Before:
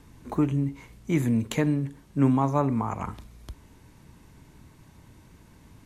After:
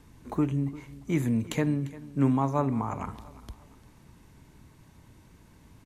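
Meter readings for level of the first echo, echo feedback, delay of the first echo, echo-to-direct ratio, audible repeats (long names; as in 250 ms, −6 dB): −18.5 dB, 35%, 348 ms, −18.0 dB, 2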